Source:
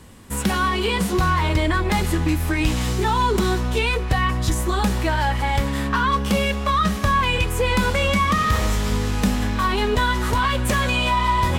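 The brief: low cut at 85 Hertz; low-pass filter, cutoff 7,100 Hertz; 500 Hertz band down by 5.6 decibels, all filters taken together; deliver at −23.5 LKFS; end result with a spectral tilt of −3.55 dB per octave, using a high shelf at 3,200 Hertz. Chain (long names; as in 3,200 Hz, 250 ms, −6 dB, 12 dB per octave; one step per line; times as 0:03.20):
high-pass filter 85 Hz
low-pass filter 7,100 Hz
parametric band 500 Hz −7.5 dB
high-shelf EQ 3,200 Hz +8.5 dB
level −2.5 dB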